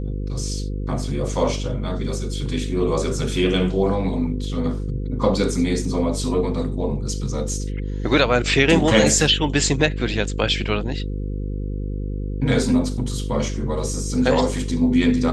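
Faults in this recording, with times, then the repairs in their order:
buzz 50 Hz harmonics 10 -26 dBFS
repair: de-hum 50 Hz, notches 10

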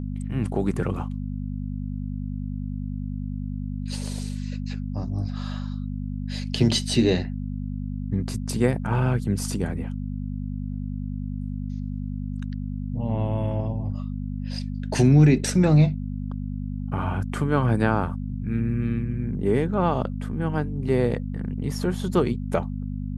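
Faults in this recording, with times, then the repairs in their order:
hum 50 Hz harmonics 5 -30 dBFS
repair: de-hum 50 Hz, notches 5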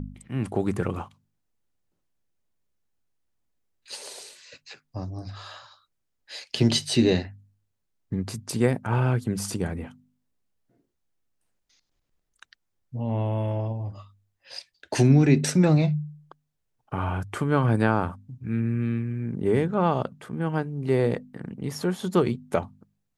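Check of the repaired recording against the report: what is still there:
none

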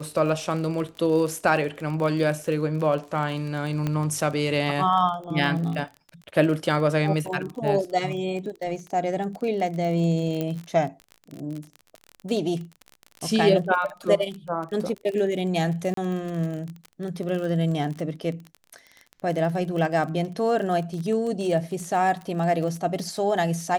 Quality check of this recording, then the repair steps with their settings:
crackle 32/s -30 dBFS
3.87 pop -14 dBFS
10.41 pop -15 dBFS
15.94–15.97 gap 33 ms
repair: de-click; interpolate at 15.94, 33 ms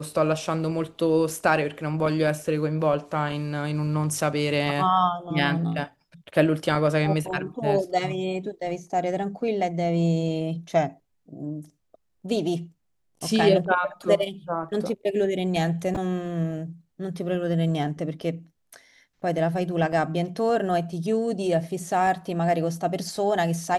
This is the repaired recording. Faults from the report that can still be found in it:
none

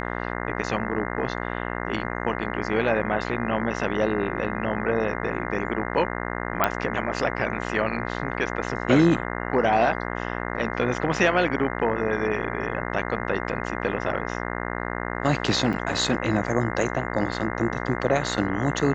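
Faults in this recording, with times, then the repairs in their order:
buzz 60 Hz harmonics 35 -30 dBFS
6.64 pop -5 dBFS
15.73 gap 3.9 ms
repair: de-click; de-hum 60 Hz, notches 35; interpolate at 15.73, 3.9 ms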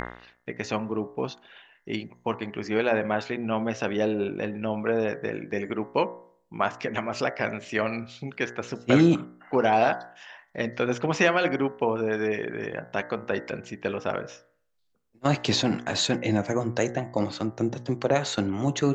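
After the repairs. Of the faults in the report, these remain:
none

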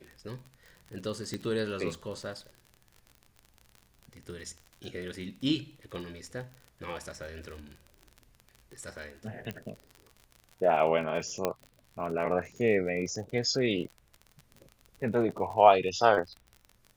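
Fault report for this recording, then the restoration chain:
crackle 40/s -38 dBFS
1.34 pop -21 dBFS
9.51 pop -22 dBFS
11.45 pop -13 dBFS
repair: de-click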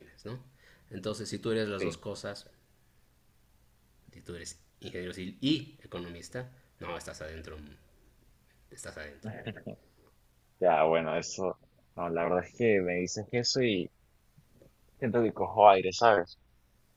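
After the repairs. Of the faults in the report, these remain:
none

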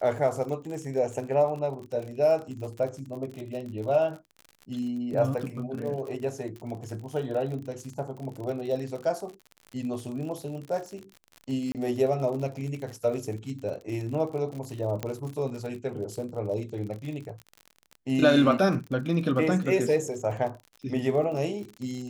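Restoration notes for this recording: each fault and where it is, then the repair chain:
crackle 55/s -35 dBFS
11.72–11.75 gap 28 ms
15.03 pop -16 dBFS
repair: de-click; interpolate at 11.72, 28 ms

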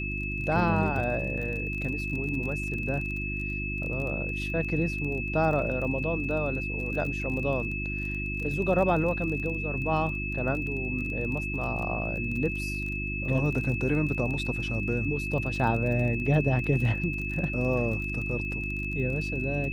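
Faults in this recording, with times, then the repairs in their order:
crackle 27/s -34 dBFS
hum 50 Hz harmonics 7 -34 dBFS
tone 2600 Hz -33 dBFS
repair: de-click; de-hum 50 Hz, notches 7; notch 2600 Hz, Q 30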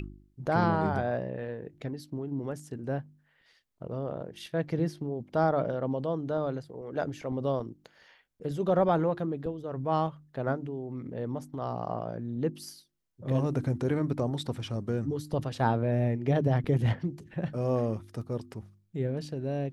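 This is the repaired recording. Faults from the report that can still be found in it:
none

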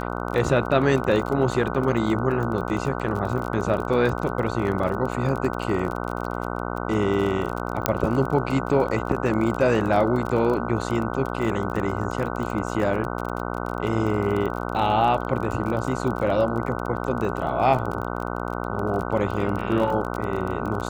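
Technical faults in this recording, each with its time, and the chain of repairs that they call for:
buzz 60 Hz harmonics 25 -29 dBFS
crackle 31/s -28 dBFS
7.86 pop -2 dBFS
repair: de-click; de-hum 60 Hz, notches 25

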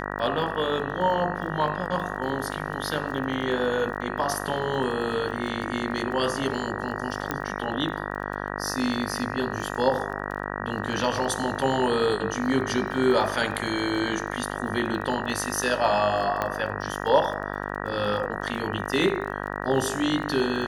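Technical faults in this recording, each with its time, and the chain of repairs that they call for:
buzz 50 Hz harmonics 38 -32 dBFS
crackle 27/s -35 dBFS
7.31 pop -12 dBFS
16.42 pop -12 dBFS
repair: de-click; de-hum 50 Hz, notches 38

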